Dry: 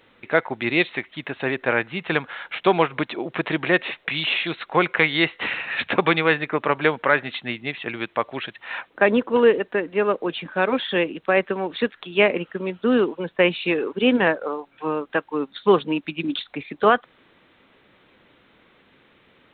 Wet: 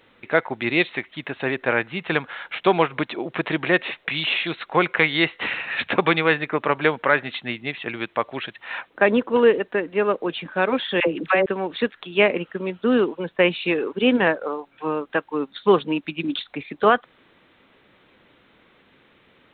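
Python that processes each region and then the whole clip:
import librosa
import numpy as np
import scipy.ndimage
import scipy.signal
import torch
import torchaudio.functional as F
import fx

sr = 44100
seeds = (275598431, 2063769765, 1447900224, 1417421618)

y = fx.chain(x, sr, fx.dispersion(late='lows', ms=72.0, hz=670.0),
    fx.band_squash(depth_pct=70), at=(11.0, 11.46))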